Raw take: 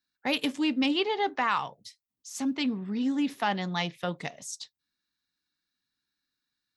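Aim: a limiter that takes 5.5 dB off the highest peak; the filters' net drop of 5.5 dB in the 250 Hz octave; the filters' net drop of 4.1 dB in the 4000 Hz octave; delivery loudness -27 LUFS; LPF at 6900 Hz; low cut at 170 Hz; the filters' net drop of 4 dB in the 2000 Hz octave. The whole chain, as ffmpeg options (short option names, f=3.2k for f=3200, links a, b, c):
-af "highpass=170,lowpass=6.9k,equalizer=f=250:t=o:g=-5.5,equalizer=f=2k:t=o:g=-4,equalizer=f=4k:t=o:g=-3.5,volume=7.5dB,alimiter=limit=-14dB:level=0:latency=1"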